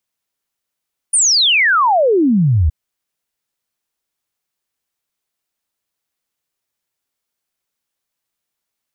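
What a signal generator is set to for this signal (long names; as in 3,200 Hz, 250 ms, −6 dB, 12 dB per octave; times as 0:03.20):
exponential sine sweep 9,700 Hz → 70 Hz 1.57 s −9.5 dBFS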